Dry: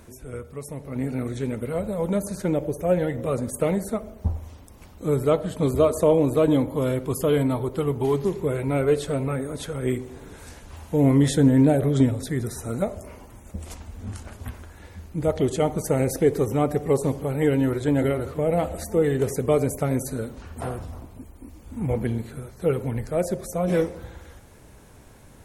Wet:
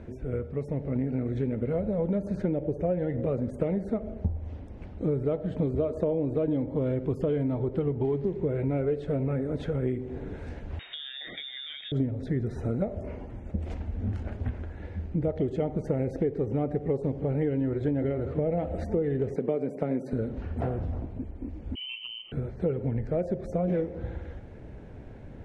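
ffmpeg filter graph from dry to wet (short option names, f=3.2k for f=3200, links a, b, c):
-filter_complex "[0:a]asettb=1/sr,asplit=3[a][b][c];[a]atrim=end=10.794[d];[b]atrim=start=10.79:end=11.92,asetpts=PTS-STARTPTS,afade=t=in:d=0.004:c=qsin,afade=t=out:st=1.126:d=0.004:c=qsin,equalizer=f=1.8k:w=0.95:g=12,lowpass=f=3.2k:t=q:w=0.5098,lowpass=f=3.2k:t=q:w=0.6013,lowpass=f=3.2k:t=q:w=0.9,lowpass=f=3.2k:t=q:w=2.563,afreqshift=-3800[e];[c]atrim=start=11.916[f];[d][e]acrossfade=d=0.004:c1=hsin:c2=qsin[g];[g][f]acrossfade=d=0.004:c1=qsin:c2=hsin,asettb=1/sr,asplit=3[h][i][j];[h]atrim=end=19.364[k];[i]atrim=start=19.36:end=20.13,asetpts=PTS-STARTPTS,afade=t=in:d=0.004:c=qsin,afade=t=out:st=0.766:d=0.004:c=qsin,highpass=f=170:w=0.5412,highpass=f=170:w=1.3066,bandreject=f=6.6k:w=8.3[l];[j]atrim=start=20.126[m];[k][l]acrossfade=d=0.004:c1=hsin:c2=qsin[n];[n][m]acrossfade=d=0.004:c1=qsin:c2=hsin,asettb=1/sr,asplit=3[o][p][q];[o]atrim=end=21.754[r];[p]atrim=start=21.75:end=22.32,asetpts=PTS-STARTPTS,afade=t=in:d=0.004:c=qsin,afade=t=out:st=0.566:d=0.004:c=qsin,equalizer=f=2.4k:t=o:w=0.24:g=-10.5,lowpass=f=2.7k:t=q:w=0.5098,lowpass=f=2.7k:t=q:w=0.6013,lowpass=f=2.7k:t=q:w=0.9,lowpass=f=2.7k:t=q:w=2.563,afreqshift=-3200,asuperstop=centerf=1600:order=4:qfactor=1.7[s];[q]atrim=start=22.316[t];[r][s]acrossfade=d=0.004:c1=hsin:c2=qsin[u];[u][t]acrossfade=d=0.004:c1=qsin:c2=hsin,equalizer=f=1.1k:w=1.7:g=-12,acompressor=threshold=-31dB:ratio=6,lowpass=1.6k,volume=6dB"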